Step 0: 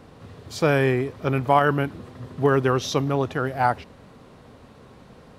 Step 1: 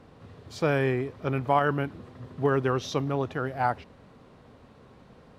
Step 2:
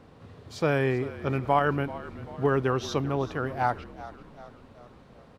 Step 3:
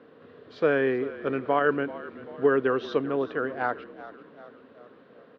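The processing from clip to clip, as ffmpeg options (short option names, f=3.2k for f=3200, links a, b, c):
-af "highshelf=f=6.9k:g=-8.5,volume=-5dB"
-filter_complex "[0:a]asplit=6[a][b][c][d][e][f];[b]adelay=387,afreqshift=-45,volume=-16dB[g];[c]adelay=774,afreqshift=-90,volume=-21.5dB[h];[d]adelay=1161,afreqshift=-135,volume=-27dB[i];[e]adelay=1548,afreqshift=-180,volume=-32.5dB[j];[f]adelay=1935,afreqshift=-225,volume=-38.1dB[k];[a][g][h][i][j][k]amix=inputs=6:normalize=0"
-af "highpass=260,equalizer=f=270:t=q:w=4:g=4,equalizer=f=460:t=q:w=4:g=7,equalizer=f=840:t=q:w=4:g=-8,equalizer=f=1.6k:t=q:w=4:g=5,equalizer=f=2.3k:t=q:w=4:g=-4,lowpass=f=3.6k:w=0.5412,lowpass=f=3.6k:w=1.3066"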